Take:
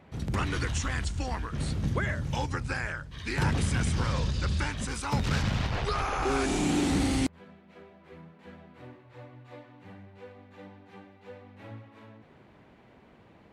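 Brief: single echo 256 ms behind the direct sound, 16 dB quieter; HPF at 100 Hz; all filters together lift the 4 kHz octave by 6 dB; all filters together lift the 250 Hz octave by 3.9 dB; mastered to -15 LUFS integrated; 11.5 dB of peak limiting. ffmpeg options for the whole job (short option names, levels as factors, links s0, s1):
-af "highpass=100,equalizer=f=250:t=o:g=5,equalizer=f=4000:t=o:g=7.5,alimiter=level_in=1.06:limit=0.0631:level=0:latency=1,volume=0.944,aecho=1:1:256:0.158,volume=8.41"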